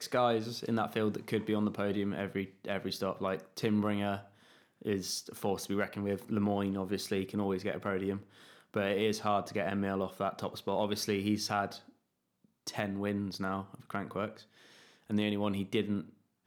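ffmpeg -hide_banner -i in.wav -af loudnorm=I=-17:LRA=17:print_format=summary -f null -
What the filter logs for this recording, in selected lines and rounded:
Input Integrated:    -34.5 LUFS
Input True Peak:     -16.4 dBTP
Input LRA:             3.4 LU
Input Threshold:     -45.1 LUFS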